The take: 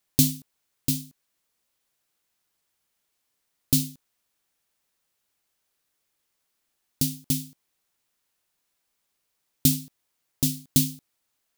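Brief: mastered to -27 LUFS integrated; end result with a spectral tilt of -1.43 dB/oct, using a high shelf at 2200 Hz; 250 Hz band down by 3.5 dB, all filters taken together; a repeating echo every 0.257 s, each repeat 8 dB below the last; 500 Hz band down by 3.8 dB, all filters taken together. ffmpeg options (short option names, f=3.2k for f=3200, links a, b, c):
-af "equalizer=f=250:t=o:g=-3.5,equalizer=f=500:t=o:g=-4,highshelf=f=2.2k:g=5.5,aecho=1:1:257|514|771|1028|1285:0.398|0.159|0.0637|0.0255|0.0102,volume=-4.5dB"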